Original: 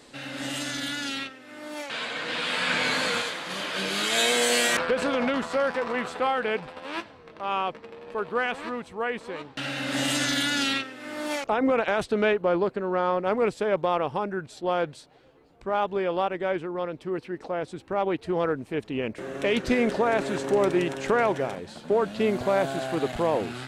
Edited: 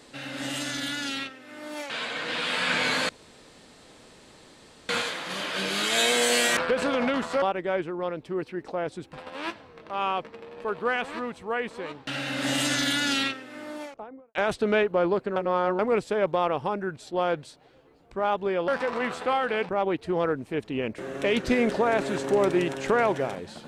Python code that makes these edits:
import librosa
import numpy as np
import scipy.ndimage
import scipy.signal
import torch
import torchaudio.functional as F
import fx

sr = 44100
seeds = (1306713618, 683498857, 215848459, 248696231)

y = fx.studio_fade_out(x, sr, start_s=10.73, length_s=1.12)
y = fx.edit(y, sr, fx.insert_room_tone(at_s=3.09, length_s=1.8),
    fx.swap(start_s=5.62, length_s=1.01, other_s=16.18, other_length_s=1.71),
    fx.reverse_span(start_s=12.86, length_s=0.43), tone=tone)